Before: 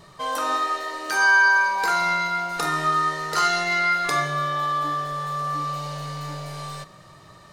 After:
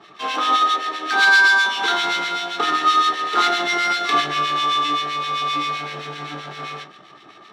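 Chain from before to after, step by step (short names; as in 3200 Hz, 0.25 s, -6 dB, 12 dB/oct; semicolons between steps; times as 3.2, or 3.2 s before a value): half-waves squared off; three-band isolator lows -20 dB, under 220 Hz, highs -23 dB, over 6800 Hz; reverb RT60 0.35 s, pre-delay 3 ms, DRR 5 dB; harmonic tremolo 7.7 Hz, depth 70%, crossover 1500 Hz; bell 3700 Hz +11.5 dB 0.43 oct; gain -4 dB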